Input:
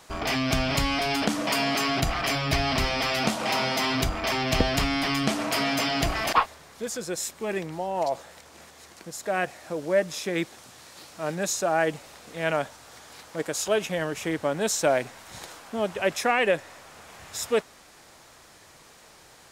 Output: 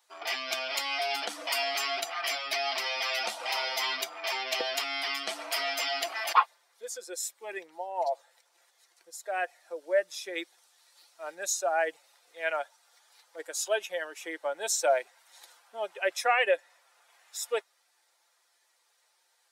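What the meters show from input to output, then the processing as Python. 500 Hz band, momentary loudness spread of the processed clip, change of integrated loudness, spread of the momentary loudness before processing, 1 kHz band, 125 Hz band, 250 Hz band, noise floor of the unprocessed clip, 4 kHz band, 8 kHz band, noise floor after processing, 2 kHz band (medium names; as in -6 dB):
-5.0 dB, 14 LU, -4.5 dB, 14 LU, -3.5 dB, under -40 dB, -21.0 dB, -52 dBFS, -3.0 dB, -3.0 dB, -71 dBFS, -3.5 dB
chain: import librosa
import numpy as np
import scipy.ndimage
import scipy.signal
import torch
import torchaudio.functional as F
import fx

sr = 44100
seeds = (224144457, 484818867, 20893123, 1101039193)

y = fx.bin_expand(x, sr, power=1.5)
y = scipy.signal.sosfilt(scipy.signal.butter(4, 490.0, 'highpass', fs=sr, output='sos'), y)
y = y + 0.31 * np.pad(y, (int(5.7 * sr / 1000.0), 0))[:len(y)]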